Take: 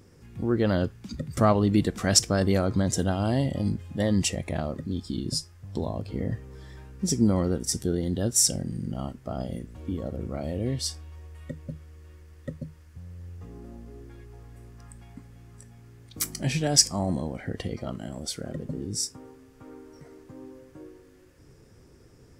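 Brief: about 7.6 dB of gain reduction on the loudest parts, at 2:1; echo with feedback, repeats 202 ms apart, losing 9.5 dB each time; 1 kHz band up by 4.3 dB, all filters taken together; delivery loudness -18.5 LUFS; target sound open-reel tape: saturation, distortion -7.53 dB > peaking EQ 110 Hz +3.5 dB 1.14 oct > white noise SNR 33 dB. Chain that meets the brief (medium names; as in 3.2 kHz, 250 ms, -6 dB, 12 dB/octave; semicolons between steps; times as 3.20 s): peaking EQ 1 kHz +6 dB; compression 2:1, threshold -27 dBFS; feedback delay 202 ms, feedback 33%, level -9.5 dB; saturation -30.5 dBFS; peaking EQ 110 Hz +3.5 dB 1.14 oct; white noise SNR 33 dB; trim +17 dB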